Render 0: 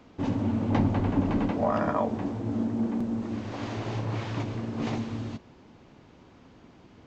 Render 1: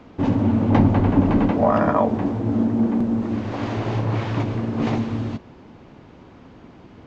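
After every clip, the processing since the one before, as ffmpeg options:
ffmpeg -i in.wav -af "highshelf=frequency=4100:gain=-10,volume=8.5dB" out.wav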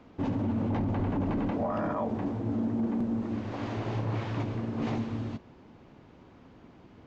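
ffmpeg -i in.wav -af "alimiter=limit=-14dB:level=0:latency=1:release=15,volume=-8.5dB" out.wav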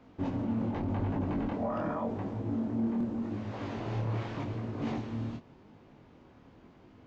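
ffmpeg -i in.wav -af "flanger=delay=19:depth=7.3:speed=0.86" out.wav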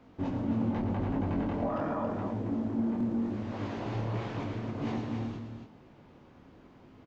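ffmpeg -i in.wav -af "aecho=1:1:110.8|274.1:0.355|0.447" out.wav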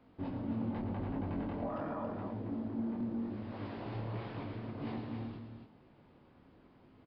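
ffmpeg -i in.wav -af "aresample=11025,aresample=44100,volume=-6.5dB" out.wav

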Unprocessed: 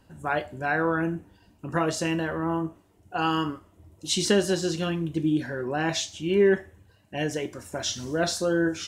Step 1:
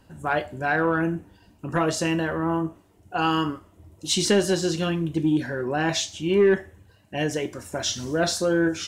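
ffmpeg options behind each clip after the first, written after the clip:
ffmpeg -i in.wav -af "asoftclip=type=tanh:threshold=-12.5dB,volume=3dB" out.wav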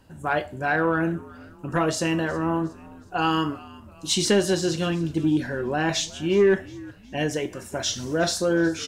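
ffmpeg -i in.wav -filter_complex "[0:a]asplit=4[link_01][link_02][link_03][link_04];[link_02]adelay=364,afreqshift=-71,volume=-21dB[link_05];[link_03]adelay=728,afreqshift=-142,volume=-27.7dB[link_06];[link_04]adelay=1092,afreqshift=-213,volume=-34.5dB[link_07];[link_01][link_05][link_06][link_07]amix=inputs=4:normalize=0" out.wav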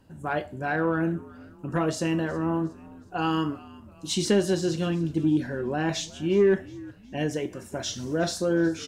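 ffmpeg -i in.wav -af "equalizer=frequency=210:width_type=o:width=2.8:gain=5.5,volume=-6dB" out.wav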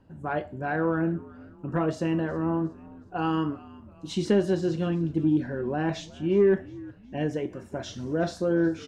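ffmpeg -i in.wav -af "lowpass=frequency=1600:poles=1" out.wav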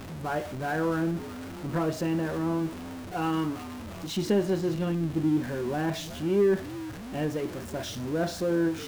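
ffmpeg -i in.wav -af "aeval=exprs='val(0)+0.5*0.0237*sgn(val(0))':channel_layout=same,volume=-3dB" out.wav

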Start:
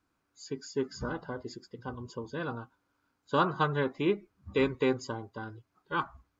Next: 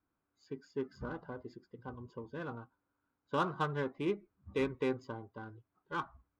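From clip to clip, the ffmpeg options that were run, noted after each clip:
ffmpeg -i in.wav -af "adynamicsmooth=sensitivity=4.5:basefreq=2400,volume=-6dB" out.wav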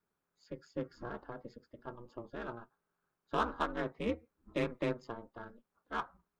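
ffmpeg -i in.wav -af "lowshelf=frequency=160:gain=-9.5,aeval=exprs='val(0)*sin(2*PI*120*n/s)':channel_layout=same,volume=3.5dB" out.wav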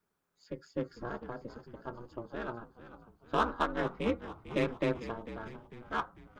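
ffmpeg -i in.wav -filter_complex "[0:a]asplit=6[link_01][link_02][link_03][link_04][link_05][link_06];[link_02]adelay=448,afreqshift=-74,volume=-13.5dB[link_07];[link_03]adelay=896,afreqshift=-148,volume=-19.2dB[link_08];[link_04]adelay=1344,afreqshift=-222,volume=-24.9dB[link_09];[link_05]adelay=1792,afreqshift=-296,volume=-30.5dB[link_10];[link_06]adelay=2240,afreqshift=-370,volume=-36.2dB[link_11];[link_01][link_07][link_08][link_09][link_10][link_11]amix=inputs=6:normalize=0,volume=3.5dB" out.wav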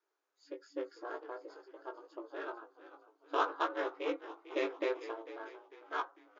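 ffmpeg -i in.wav -filter_complex "[0:a]afftfilt=real='re*between(b*sr/4096,290,7200)':imag='im*between(b*sr/4096,290,7200)':win_size=4096:overlap=0.75,asplit=2[link_01][link_02];[link_02]adelay=18,volume=-5dB[link_03];[link_01][link_03]amix=inputs=2:normalize=0,volume=-3.5dB" out.wav

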